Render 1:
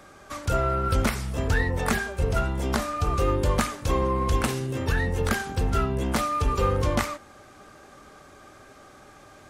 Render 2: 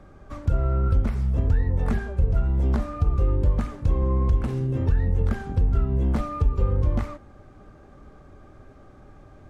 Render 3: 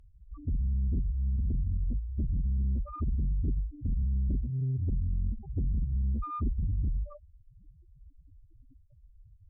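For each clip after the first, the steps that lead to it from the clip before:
tilt EQ -4 dB/octave; compression 3:1, threshold -13 dBFS, peak gain reduction 9.5 dB; trim -5.5 dB
loudest bins only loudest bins 2; Chebyshev shaper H 4 -15 dB, 5 -11 dB, 6 -9 dB, 8 -18 dB, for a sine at -13 dBFS; trim -9 dB

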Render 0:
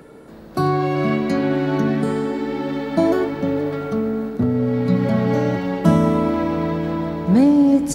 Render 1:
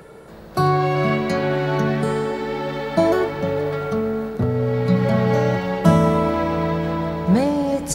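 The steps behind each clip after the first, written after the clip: peaking EQ 270 Hz -14.5 dB 0.44 oct; trim +3 dB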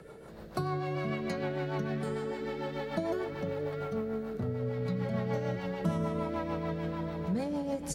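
compression 2:1, threshold -28 dBFS, peak gain reduction 11 dB; rotary cabinet horn 6.7 Hz; trim -5.5 dB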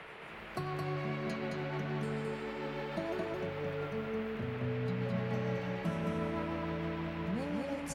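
band noise 360–2600 Hz -45 dBFS; delay 218 ms -3 dB; trim -5.5 dB

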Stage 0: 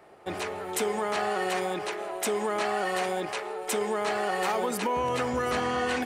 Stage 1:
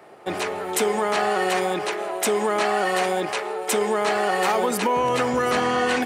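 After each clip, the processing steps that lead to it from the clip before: high-pass 120 Hz 12 dB/octave; trim +6.5 dB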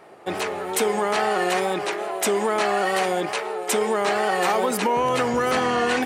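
wow and flutter 55 cents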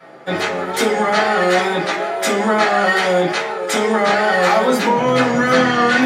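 reverberation RT60 0.45 s, pre-delay 3 ms, DRR -13 dB; trim -7 dB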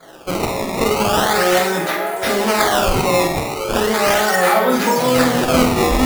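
decimation with a swept rate 16×, swing 160% 0.38 Hz; flutter echo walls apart 8.2 m, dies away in 0.39 s; trim -1 dB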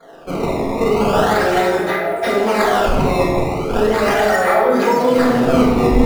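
resonances exaggerated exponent 1.5; simulated room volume 730 m³, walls mixed, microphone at 1.7 m; trim -2.5 dB

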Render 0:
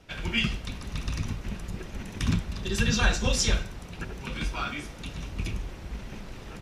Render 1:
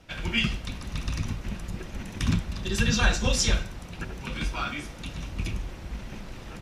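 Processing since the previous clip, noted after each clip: band-stop 420 Hz, Q 12; trim +1 dB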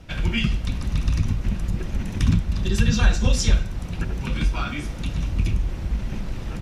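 compression 1.5:1, threshold -34 dBFS, peak gain reduction 7 dB; bass shelf 240 Hz +10 dB; trim +3.5 dB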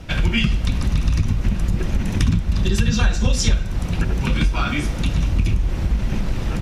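compression 3:1, threshold -23 dBFS, peak gain reduction 9.5 dB; trim +8 dB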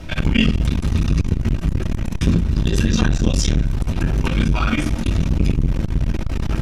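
reverberation RT60 0.25 s, pre-delay 3 ms, DRR 2.5 dB; transformer saturation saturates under 210 Hz; trim +2 dB

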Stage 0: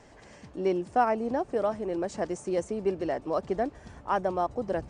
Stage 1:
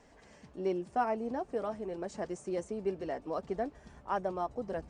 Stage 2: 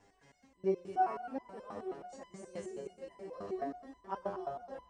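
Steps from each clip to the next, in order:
flange 0.61 Hz, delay 4.1 ms, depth 1.1 ms, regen -55%; trim -2.5 dB
multi-head delay 112 ms, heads first and second, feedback 62%, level -11 dB; resonator arpeggio 9.4 Hz 100–1000 Hz; trim +6 dB

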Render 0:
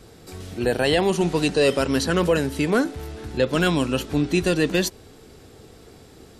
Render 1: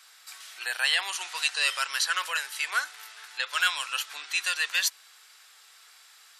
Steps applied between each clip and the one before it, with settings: high-pass 1.2 kHz 24 dB/octave; trim +1.5 dB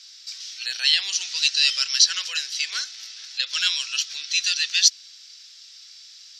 FFT filter 200 Hz 0 dB, 960 Hz -19 dB, 5.6 kHz +14 dB, 9.4 kHz -15 dB; trim +2.5 dB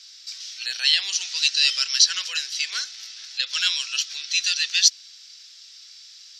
steep high-pass 250 Hz 36 dB/octave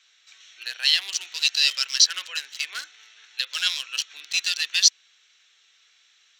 local Wiener filter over 9 samples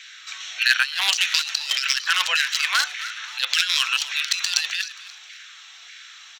compressor with a negative ratio -33 dBFS, ratio -1; frequency-shifting echo 265 ms, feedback 34%, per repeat -76 Hz, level -15.5 dB; LFO high-pass saw down 1.7 Hz 660–1900 Hz; trim +7.5 dB

